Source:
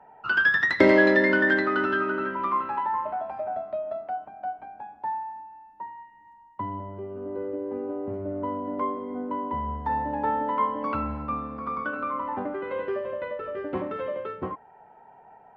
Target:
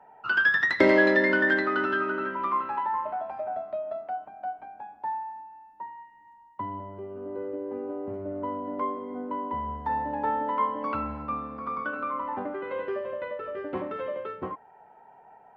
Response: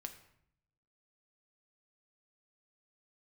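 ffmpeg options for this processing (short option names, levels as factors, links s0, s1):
-af "lowshelf=f=220:g=-5,volume=0.891"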